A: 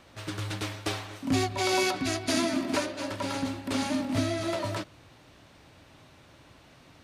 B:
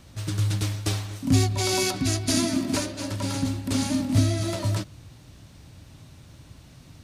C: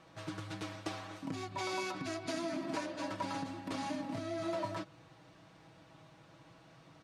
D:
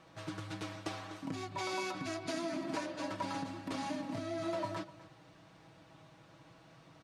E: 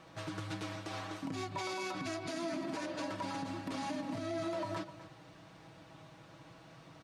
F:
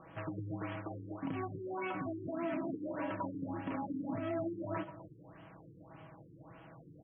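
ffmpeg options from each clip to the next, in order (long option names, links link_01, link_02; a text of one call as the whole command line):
ffmpeg -i in.wav -af "bass=frequency=250:gain=15,treble=frequency=4000:gain=11,volume=-2.5dB" out.wav
ffmpeg -i in.wav -af "aecho=1:1:6.2:0.65,acompressor=threshold=-26dB:ratio=6,bandpass=frequency=910:width_type=q:width=0.74:csg=0,volume=-1.5dB" out.wav
ffmpeg -i in.wav -af "aecho=1:1:249:0.126" out.wav
ffmpeg -i in.wav -af "alimiter=level_in=9dB:limit=-24dB:level=0:latency=1:release=96,volume=-9dB,volume=3.5dB" out.wav
ffmpeg -i in.wav -af "afftfilt=real='re*lt(b*sr/1024,460*pow(3400/460,0.5+0.5*sin(2*PI*1.7*pts/sr)))':imag='im*lt(b*sr/1024,460*pow(3400/460,0.5+0.5*sin(2*PI*1.7*pts/sr)))':win_size=1024:overlap=0.75,volume=1.5dB" out.wav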